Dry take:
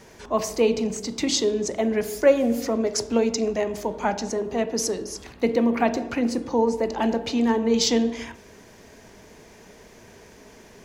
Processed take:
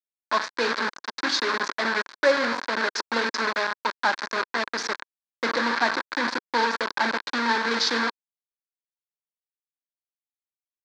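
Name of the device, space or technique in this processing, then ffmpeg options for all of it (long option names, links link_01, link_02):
hand-held game console: -af "acrusher=bits=3:mix=0:aa=0.000001,highpass=400,equalizer=frequency=440:width_type=q:width=4:gain=-7,equalizer=frequency=690:width_type=q:width=4:gain=-7,equalizer=frequency=1000:width_type=q:width=4:gain=6,equalizer=frequency=1600:width_type=q:width=4:gain=10,equalizer=frequency=2900:width_type=q:width=4:gain=-8,equalizer=frequency=4300:width_type=q:width=4:gain=5,lowpass=frequency=4900:width=0.5412,lowpass=frequency=4900:width=1.3066"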